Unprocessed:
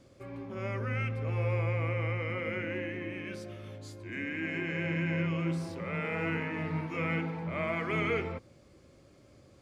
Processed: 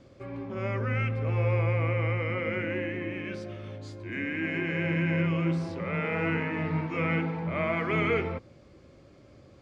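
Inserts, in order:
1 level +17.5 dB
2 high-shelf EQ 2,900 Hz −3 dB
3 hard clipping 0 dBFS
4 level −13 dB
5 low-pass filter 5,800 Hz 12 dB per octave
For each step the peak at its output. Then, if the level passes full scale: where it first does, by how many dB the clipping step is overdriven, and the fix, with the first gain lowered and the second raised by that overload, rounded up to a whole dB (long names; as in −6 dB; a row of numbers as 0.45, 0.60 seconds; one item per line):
−2.0, −2.5, −2.5, −15.5, −15.5 dBFS
no step passes full scale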